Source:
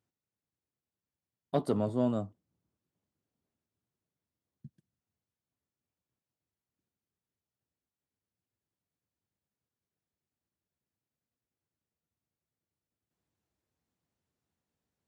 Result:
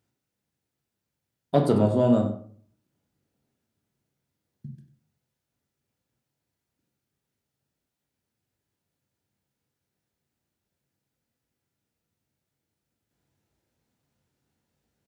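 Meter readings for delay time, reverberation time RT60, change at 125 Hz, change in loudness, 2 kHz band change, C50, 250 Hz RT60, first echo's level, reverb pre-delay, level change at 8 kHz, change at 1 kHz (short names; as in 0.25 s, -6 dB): 96 ms, 0.50 s, +11.0 dB, +9.0 dB, +9.5 dB, 7.5 dB, 0.60 s, -13.0 dB, 19 ms, n/a, +9.0 dB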